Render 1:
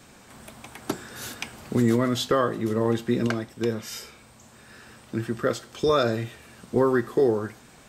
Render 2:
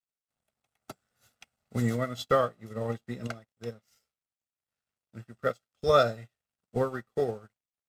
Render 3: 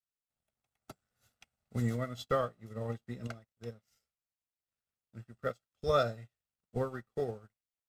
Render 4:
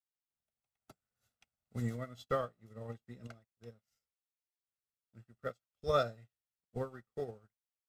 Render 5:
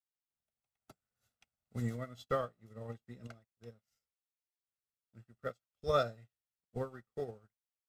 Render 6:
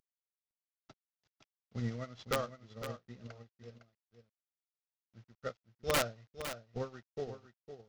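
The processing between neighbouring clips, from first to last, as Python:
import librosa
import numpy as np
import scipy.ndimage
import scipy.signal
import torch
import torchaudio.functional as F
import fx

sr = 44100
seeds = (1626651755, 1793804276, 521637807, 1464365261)

y1 = x + 0.66 * np.pad(x, (int(1.5 * sr / 1000.0), 0))[:len(x)]
y1 = np.sign(y1) * np.maximum(np.abs(y1) - 10.0 ** (-45.0 / 20.0), 0.0)
y1 = fx.upward_expand(y1, sr, threshold_db=-40.0, expansion=2.5)
y2 = fx.low_shelf(y1, sr, hz=110.0, db=8.5)
y2 = y2 * librosa.db_to_amplitude(-7.0)
y3 = fx.upward_expand(y2, sr, threshold_db=-39.0, expansion=1.5)
y3 = y3 * librosa.db_to_amplitude(-1.5)
y4 = y3
y5 = fx.cvsd(y4, sr, bps=32000)
y5 = (np.mod(10.0 ** (22.5 / 20.0) * y5 + 1.0, 2.0) - 1.0) / 10.0 ** (22.5 / 20.0)
y5 = y5 + 10.0 ** (-10.5 / 20.0) * np.pad(y5, (int(508 * sr / 1000.0), 0))[:len(y5)]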